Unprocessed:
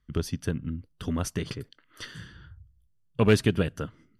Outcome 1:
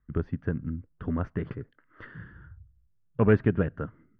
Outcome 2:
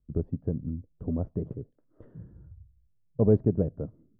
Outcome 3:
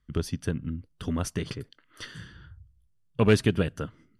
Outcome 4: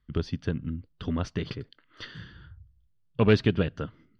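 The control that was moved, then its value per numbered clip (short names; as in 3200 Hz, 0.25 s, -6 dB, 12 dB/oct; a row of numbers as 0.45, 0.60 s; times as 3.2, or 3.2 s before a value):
Chebyshev low-pass, frequency: 1700, 640, 11000, 4300 Hz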